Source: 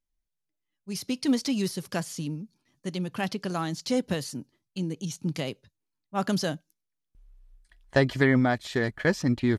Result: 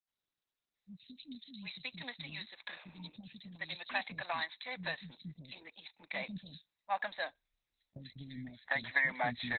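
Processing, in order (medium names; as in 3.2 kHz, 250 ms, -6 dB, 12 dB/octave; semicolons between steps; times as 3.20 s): 3.53–4.09 s: time-frequency box 890–11000 Hz +7 dB; frequency weighting ITU-R 468; 1.97–2.27 s: spectral replace 480–6200 Hz both; high-pass 45 Hz 6 dB/octave; treble shelf 5 kHz +7.5 dB, from 3.23 s -6 dB, from 5.32 s -11 dB; compression 16:1, threshold -25 dBFS, peak gain reduction 11 dB; static phaser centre 2 kHz, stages 8; three bands offset in time lows, highs, mids 90/750 ms, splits 310/4300 Hz; trim +2 dB; Opus 8 kbps 48 kHz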